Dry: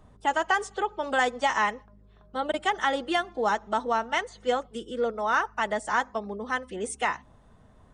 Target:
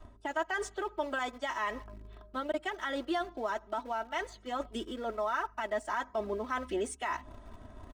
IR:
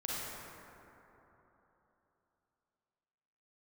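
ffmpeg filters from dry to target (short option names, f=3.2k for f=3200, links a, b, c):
-filter_complex "[0:a]adynamicequalizer=threshold=0.00398:dfrequency=200:dqfactor=1.6:tfrequency=200:tqfactor=1.6:attack=5:release=100:ratio=0.375:range=3:mode=cutabove:tftype=bell,areverse,acompressor=threshold=-37dB:ratio=5,areverse,alimiter=level_in=8.5dB:limit=-24dB:level=0:latency=1:release=127,volume=-8.5dB,asplit=2[a][b];[b]aeval=exprs='val(0)*gte(abs(val(0)),0.00355)':c=same,volume=-7dB[c];[a][c]amix=inputs=2:normalize=0,highshelf=f=5.9k:g=-8,aecho=1:1:3.1:0.7,volume=4dB"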